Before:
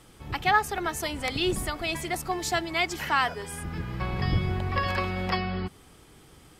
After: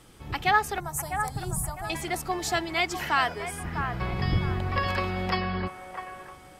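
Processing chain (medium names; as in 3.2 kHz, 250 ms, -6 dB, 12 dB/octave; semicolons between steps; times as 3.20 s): 0.80–1.90 s: FFT filter 100 Hz 0 dB, 150 Hz +8 dB, 250 Hz -13 dB, 490 Hz -13 dB, 810 Hz 0 dB, 2.8 kHz -25 dB, 8.1 kHz +5 dB; on a send: feedback echo behind a band-pass 652 ms, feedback 36%, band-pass 960 Hz, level -7 dB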